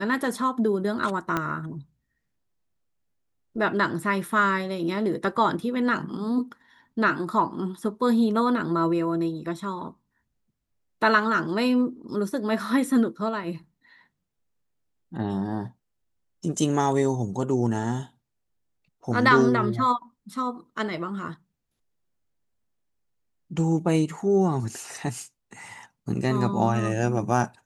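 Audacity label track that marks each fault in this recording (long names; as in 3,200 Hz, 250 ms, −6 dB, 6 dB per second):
1.370000	1.370000	click −12 dBFS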